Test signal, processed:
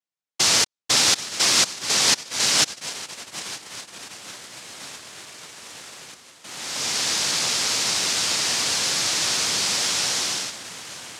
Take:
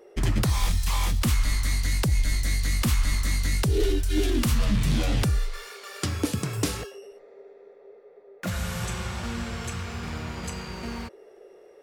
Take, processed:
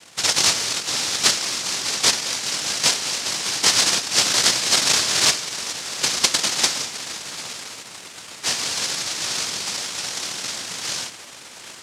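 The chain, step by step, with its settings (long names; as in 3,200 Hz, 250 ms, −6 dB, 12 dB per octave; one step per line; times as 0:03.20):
feedback delay with all-pass diffusion 886 ms, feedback 61%, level −11.5 dB
cochlear-implant simulation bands 1
dynamic equaliser 5,100 Hz, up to +7 dB, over −42 dBFS, Q 1.1
level +3.5 dB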